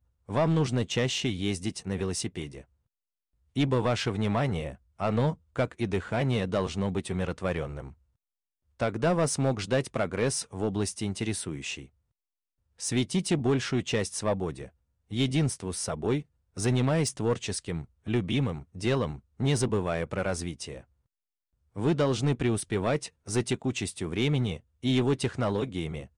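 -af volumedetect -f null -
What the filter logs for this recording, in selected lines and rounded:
mean_volume: -29.5 dB
max_volume: -17.9 dB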